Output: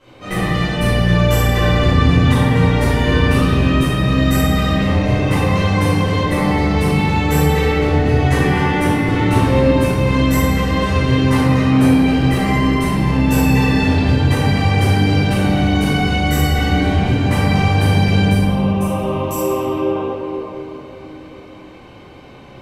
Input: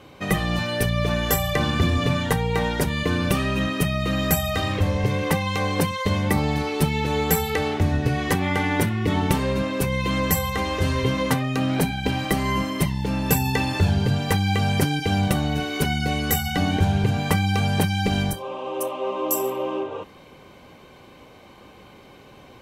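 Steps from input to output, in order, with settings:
low-pass filter 11,000 Hz 12 dB per octave
convolution reverb RT60 3.2 s, pre-delay 3 ms, DRR −16.5 dB
level −10.5 dB

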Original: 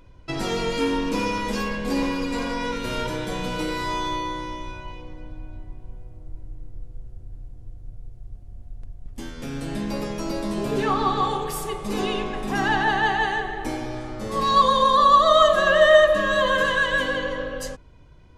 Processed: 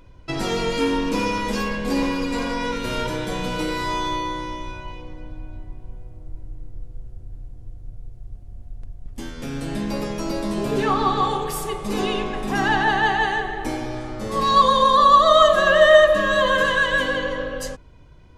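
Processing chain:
0:15.44–0:16.28: surface crackle 380 per second −45 dBFS
level +2 dB

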